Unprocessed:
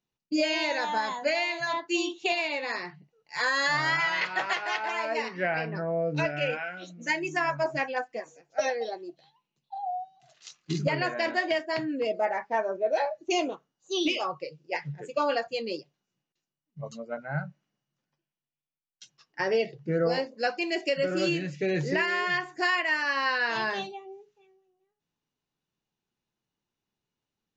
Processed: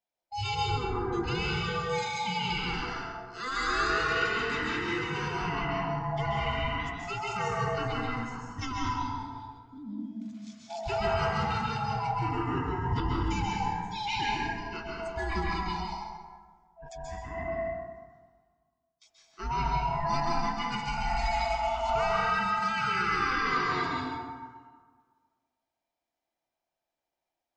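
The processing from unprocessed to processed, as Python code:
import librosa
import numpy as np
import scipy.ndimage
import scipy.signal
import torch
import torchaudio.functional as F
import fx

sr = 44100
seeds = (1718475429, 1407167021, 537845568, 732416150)

p1 = fx.band_swap(x, sr, width_hz=500)
p2 = fx.low_shelf(p1, sr, hz=190.0, db=9.0, at=(19.43, 20.05))
p3 = fx.transient(p2, sr, attack_db=-5, sustain_db=7)
p4 = fx.lowpass(p3, sr, hz=1200.0, slope=24, at=(0.54, 1.12), fade=0.02)
p5 = p4 + fx.echo_single(p4, sr, ms=133, db=-9.5, dry=0)
p6 = fx.rev_plate(p5, sr, seeds[0], rt60_s=1.6, hf_ratio=0.45, predelay_ms=120, drr_db=-3.5)
y = p6 * librosa.db_to_amplitude(-7.0)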